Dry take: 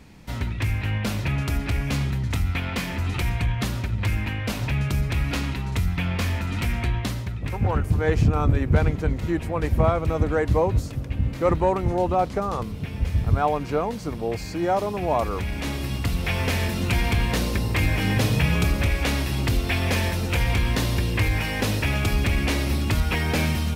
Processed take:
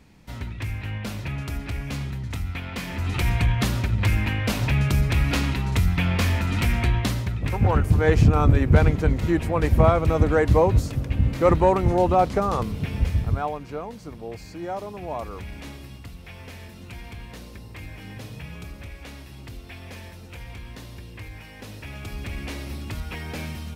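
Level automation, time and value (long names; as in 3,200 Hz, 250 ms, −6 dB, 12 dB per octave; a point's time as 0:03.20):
0:02.70 −5.5 dB
0:03.32 +3 dB
0:12.99 +3 dB
0:13.61 −8.5 dB
0:15.54 −8.5 dB
0:16.18 −17 dB
0:21.57 −17 dB
0:22.37 −10 dB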